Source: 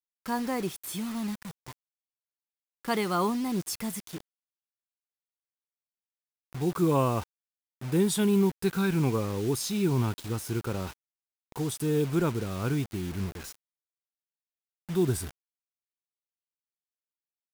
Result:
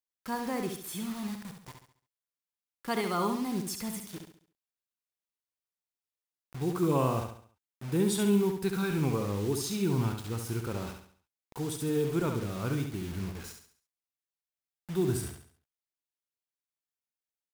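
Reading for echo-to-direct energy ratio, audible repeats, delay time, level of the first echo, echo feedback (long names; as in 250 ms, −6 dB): −5.0 dB, 4, 69 ms, −6.0 dB, 40%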